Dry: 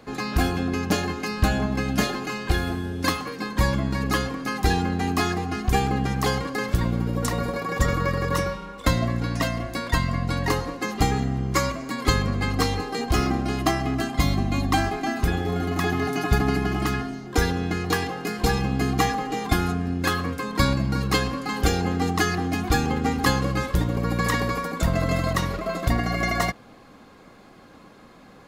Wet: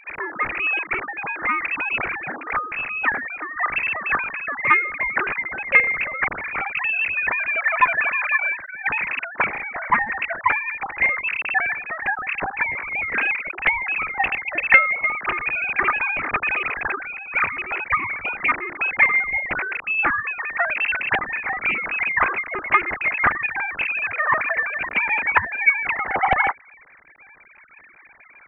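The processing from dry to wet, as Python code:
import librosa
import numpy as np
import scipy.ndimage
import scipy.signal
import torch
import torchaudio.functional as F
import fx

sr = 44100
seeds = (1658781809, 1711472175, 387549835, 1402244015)

y = fx.sine_speech(x, sr)
y = fx.freq_invert(y, sr, carrier_hz=2900)
y = fx.doppler_dist(y, sr, depth_ms=0.72)
y = F.gain(torch.from_numpy(y), 1.0).numpy()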